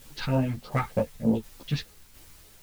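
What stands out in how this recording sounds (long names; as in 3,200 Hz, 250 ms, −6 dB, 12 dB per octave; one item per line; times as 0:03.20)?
phaser sweep stages 2, 3.3 Hz, lowest notch 530–1,800 Hz
a quantiser's noise floor 10 bits, dither triangular
tremolo saw down 1.4 Hz, depth 45%
a shimmering, thickened sound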